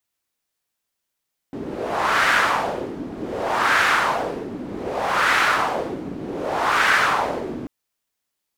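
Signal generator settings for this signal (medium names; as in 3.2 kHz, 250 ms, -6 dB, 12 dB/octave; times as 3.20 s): wind-like swept noise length 6.14 s, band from 270 Hz, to 1.6 kHz, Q 2.3, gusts 4, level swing 14 dB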